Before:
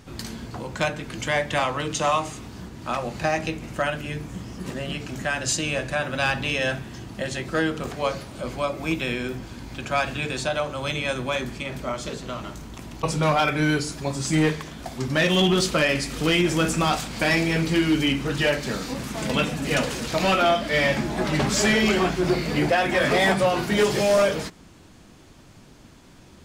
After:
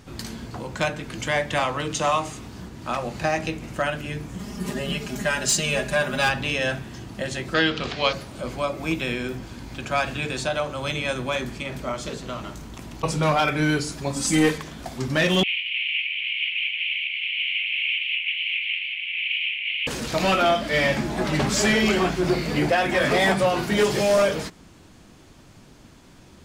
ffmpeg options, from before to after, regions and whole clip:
-filter_complex "[0:a]asettb=1/sr,asplit=3[s0][s1][s2];[s0]atrim=end=4.394[s3];[s1]atrim=start=4.39:end=6.29,asetpts=PTS-STARTPTS,afade=t=in:d=0.004:c=qsin,afade=t=out:st=1.896:d=0.004:c=qsin,highshelf=f=10000:g=8,aecho=1:1:4.9:0.94,atrim=end_sample=83790,volume=5.31,asoftclip=hard,volume=0.188[s4];[s2]atrim=start=6.286[s5];[s3][s4]acrossfade=d=0.004:c1=hsin:c2=qsin[s6];[s6][s5]acrossfade=d=0.004:c1=qsin:c2=hsin,asettb=1/sr,asplit=3[s7][s8][s9];[s7]atrim=end=7.544[s10];[s8]atrim=start=7.54:end=8.13,asetpts=PTS-STARTPTS,afade=t=in:d=0.004:c=qsin,afade=t=out:st=0.586:d=0.004:c=qsin,lowpass=f=4600:t=q:w=1.9,equalizer=f=2900:t=o:w=1.6:g=8[s11];[s9]atrim=start=8.126[s12];[s10][s11]acrossfade=d=0.004:c1=hsin:c2=qsin[s13];[s13][s12]acrossfade=d=0.004:c1=qsin:c2=hsin,asettb=1/sr,asplit=3[s14][s15][s16];[s14]atrim=end=14.164[s17];[s15]atrim=start=14.16:end=14.58,asetpts=PTS-STARTPTS,afade=t=in:d=0.004:c=qsin,afade=t=out:st=0.416:d=0.004:c=qsin,equalizer=f=11000:w=0.74:g=8,aecho=1:1:3.9:0.64,atrim=end_sample=18522[s18];[s16]atrim=start=14.576[s19];[s17][s18]acrossfade=d=0.004:c1=hsin:c2=qsin[s20];[s20][s19]acrossfade=d=0.004:c1=qsin:c2=hsin,asettb=1/sr,asplit=3[s21][s22][s23];[s21]atrim=end=15.434[s24];[s22]atrim=start=15.43:end=19.87,asetpts=PTS-STARTPTS,afade=t=in:d=0.004:c=qsin,afade=t=out:st=4.436:d=0.004:c=qsin,aeval=exprs='0.211*sin(PI/2*7.08*val(0)/0.211)':c=same,asuperpass=centerf=2600:order=8:qfactor=2.8[s25];[s23]atrim=start=19.866[s26];[s24][s25]acrossfade=d=0.004:c1=hsin:c2=qsin[s27];[s27][s26]acrossfade=d=0.004:c1=qsin:c2=hsin"

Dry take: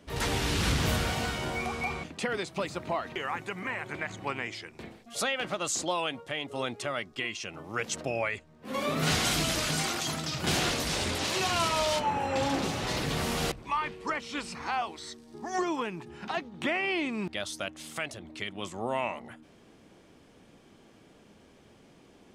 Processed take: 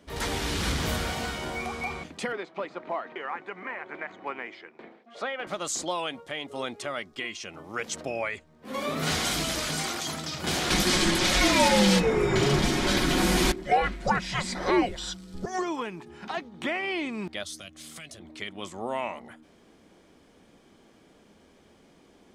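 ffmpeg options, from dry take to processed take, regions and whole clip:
-filter_complex "[0:a]asettb=1/sr,asplit=3[s0][s1][s2];[s0]atrim=end=2.324[s3];[s1]atrim=start=2.32:end=5.47,asetpts=PTS-STARTPTS,afade=t=in:d=0.004:c=qsin,afade=t=out:st=3.146:d=0.004:c=qsin,acrusher=bits=5:mode=log:mix=0:aa=0.000001,highpass=290,lowpass=2200[s4];[s2]atrim=start=5.466[s5];[s3][s4]acrossfade=d=0.004:c1=hsin:c2=qsin[s6];[s6][s5]acrossfade=d=0.004:c1=qsin:c2=hsin,asettb=1/sr,asplit=3[s7][s8][s9];[s7]atrim=end=10.704[s10];[s8]atrim=start=10.7:end=15.46,asetpts=PTS-STARTPTS,afade=t=in:d=0.004:c=qsin,afade=t=out:st=4.756:d=0.004:c=qsin,acontrast=86,afreqshift=-420,aecho=1:1:5.5:0.33,atrim=end_sample=209916[s11];[s9]atrim=start=15.456[s12];[s10][s11]acrossfade=d=0.004:c1=hsin:c2=qsin[s13];[s13][s12]acrossfade=d=0.004:c1=qsin:c2=hsin,asettb=1/sr,asplit=3[s14][s15][s16];[s14]atrim=end=17.434[s17];[s15]atrim=start=17.43:end=18.2,asetpts=PTS-STARTPTS,afade=t=in:d=0.004:c=qsin,afade=t=out:st=0.766:d=0.004:c=qsin,acrossover=split=200|3000[s18][s19][s20];[s19]acompressor=threshold=0.00398:ratio=4:attack=3.2:release=140:knee=2.83:detection=peak[s21];[s18][s21][s20]amix=inputs=3:normalize=0,asuperstop=centerf=890:order=8:qfactor=6.5,asplit=2[s22][s23];[s23]adelay=12,volume=0.211[s24];[s22][s24]amix=inputs=2:normalize=0,atrim=end_sample=33957[s25];[s16]atrim=start=18.196[s26];[s17][s25]acrossfade=d=0.004:c1=hsin:c2=qsin[s27];[s27][s26]acrossfade=d=0.004:c1=qsin:c2=hsin,equalizer=f=120:t=o:w=0.51:g=-7.5,bandreject=f=2700:w=17"

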